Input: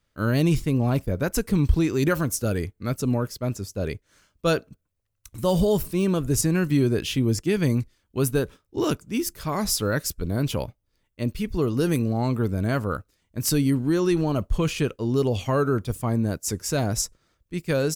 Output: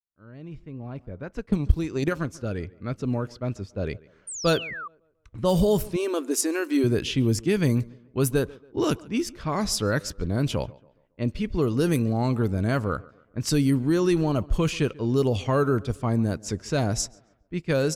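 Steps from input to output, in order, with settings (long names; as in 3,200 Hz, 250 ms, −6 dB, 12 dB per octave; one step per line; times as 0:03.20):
fade in at the beginning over 4.45 s
0:01.38–0:02.33: transient designer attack +11 dB, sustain −2 dB
low-pass that shuts in the quiet parts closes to 1,800 Hz, open at −17.5 dBFS
on a send: tape delay 140 ms, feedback 43%, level −21 dB, low-pass 2,400 Hz
0:04.27–0:04.88: on the sum: sound drawn into the spectrogram fall 1,100–9,400 Hz −35 dBFS
0:05.96–0:06.84: linear-phase brick-wall high-pass 240 Hz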